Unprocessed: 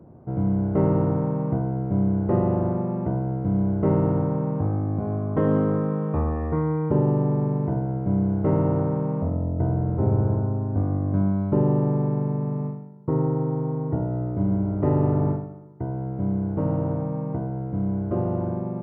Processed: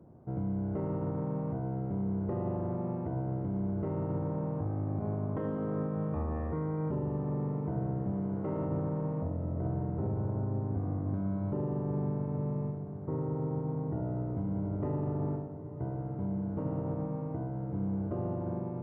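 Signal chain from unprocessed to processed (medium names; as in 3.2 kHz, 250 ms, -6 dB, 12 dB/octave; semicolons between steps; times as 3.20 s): 8.12–8.65 s: bass shelf 150 Hz -10 dB; peak limiter -18.5 dBFS, peak gain reduction 9.5 dB; echo that smears into a reverb 974 ms, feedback 76%, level -13.5 dB; trim -7.5 dB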